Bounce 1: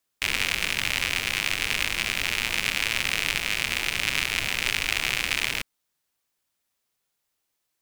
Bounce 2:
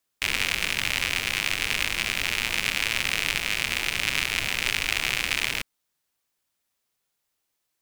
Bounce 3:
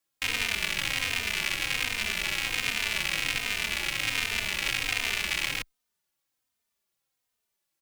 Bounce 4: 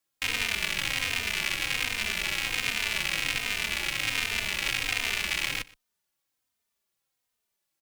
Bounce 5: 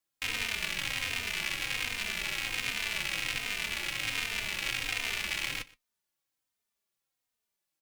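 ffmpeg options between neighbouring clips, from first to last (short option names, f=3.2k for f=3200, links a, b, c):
-af anull
-filter_complex "[0:a]asplit=2[a][b];[b]adelay=3.1,afreqshift=-1.3[c];[a][c]amix=inputs=2:normalize=1"
-af "aecho=1:1:121:0.0794"
-af "flanger=delay=5.9:depth=3.6:regen=-67:speed=1.4:shape=sinusoidal"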